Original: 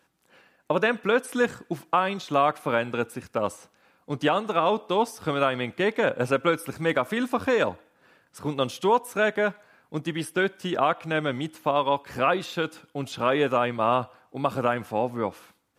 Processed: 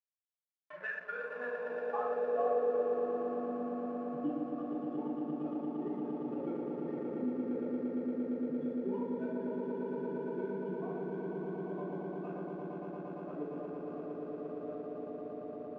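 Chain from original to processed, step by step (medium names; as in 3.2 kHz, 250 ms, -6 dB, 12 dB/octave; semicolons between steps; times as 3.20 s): expander on every frequency bin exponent 3; power-law waveshaper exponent 1.4; echo with a slow build-up 115 ms, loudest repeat 8, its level -6 dB; simulated room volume 680 m³, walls mixed, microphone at 3.4 m; hysteresis with a dead band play -28.5 dBFS; band-pass sweep 2 kHz -> 260 Hz, 0.51–3.63 s; three bands compressed up and down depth 40%; trim -7.5 dB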